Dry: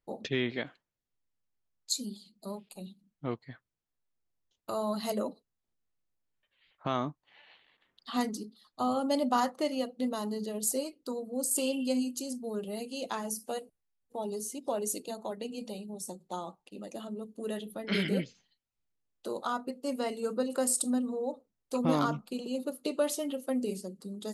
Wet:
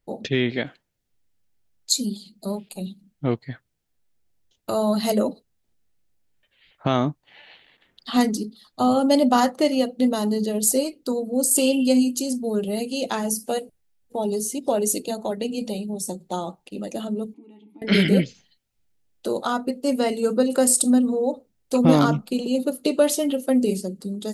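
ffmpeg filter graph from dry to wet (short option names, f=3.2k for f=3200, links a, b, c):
-filter_complex "[0:a]asettb=1/sr,asplit=3[a][b][c];[a]atrim=end=17.344[d];[b]atrim=start=17.34:end=17.82,asetpts=PTS-STARTPTS,afade=t=in:d=0.004:c=qsin,afade=t=out:st=0.476:d=0.004:c=qsin,aeval=exprs='val(0)+0.5*0.00211*sgn(val(0))':c=same,acompressor=threshold=-49dB:ratio=2:attack=3.2:release=140:knee=1:detection=peak,asplit=3[e][f][g];[e]bandpass=f=300:t=q:w=8,volume=0dB[h];[f]bandpass=f=870:t=q:w=8,volume=-6dB[i];[g]bandpass=f=2.24k:t=q:w=8,volume=-9dB[j];[h][i][j]amix=inputs=3:normalize=0[k];[c]atrim=start=17.816[l];[d][k]acrossfade=d=0.004:c1=hsin:c2=qsin[m];[m][l]acrossfade=d=0.004:c1=qsin:c2=hsin,lowshelf=f=210:g=4.5,dynaudnorm=f=270:g=5:m=3.5dB,equalizer=f=1.1k:t=o:w=0.49:g=-6,volume=7dB"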